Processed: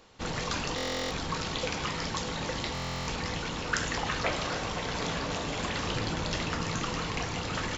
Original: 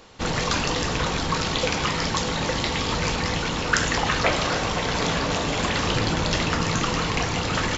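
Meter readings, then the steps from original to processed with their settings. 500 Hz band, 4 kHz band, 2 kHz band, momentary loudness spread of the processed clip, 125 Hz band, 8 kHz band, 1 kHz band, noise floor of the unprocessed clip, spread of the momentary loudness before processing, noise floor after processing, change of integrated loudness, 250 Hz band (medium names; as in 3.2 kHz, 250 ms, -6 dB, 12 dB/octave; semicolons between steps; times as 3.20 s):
-8.5 dB, -8.5 dB, -8.5 dB, 3 LU, -8.5 dB, no reading, -8.5 dB, -27 dBFS, 3 LU, -35 dBFS, -8.5 dB, -8.5 dB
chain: buffer glitch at 0.76/2.73 s, samples 1024, times 14; trim -8.5 dB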